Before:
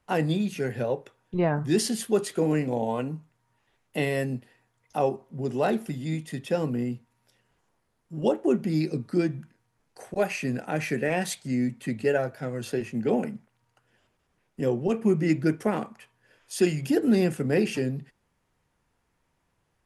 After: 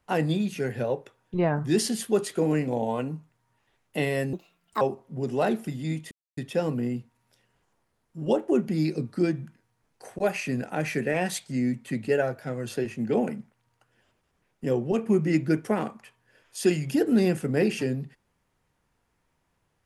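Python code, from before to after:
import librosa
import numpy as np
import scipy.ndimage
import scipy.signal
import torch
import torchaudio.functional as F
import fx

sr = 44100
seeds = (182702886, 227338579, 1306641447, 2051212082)

y = fx.edit(x, sr, fx.speed_span(start_s=4.33, length_s=0.7, speed=1.45),
    fx.insert_silence(at_s=6.33, length_s=0.26), tone=tone)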